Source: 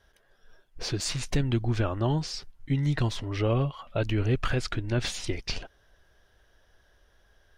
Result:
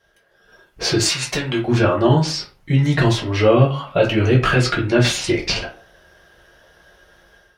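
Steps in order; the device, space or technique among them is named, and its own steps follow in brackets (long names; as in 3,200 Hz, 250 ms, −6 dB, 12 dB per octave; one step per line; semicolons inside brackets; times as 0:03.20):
far laptop microphone (convolution reverb RT60 0.40 s, pre-delay 3 ms, DRR −3.5 dB; high-pass filter 150 Hz 6 dB per octave; automatic gain control gain up to 10 dB)
0:01.09–0:01.68: low-shelf EQ 440 Hz −11.5 dB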